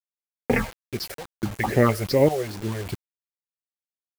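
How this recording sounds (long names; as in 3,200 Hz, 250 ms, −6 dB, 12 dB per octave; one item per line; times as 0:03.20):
phaser sweep stages 6, 2.4 Hz, lowest notch 240–1,200 Hz
sample-and-hold tremolo, depth 95%
a quantiser's noise floor 8 bits, dither none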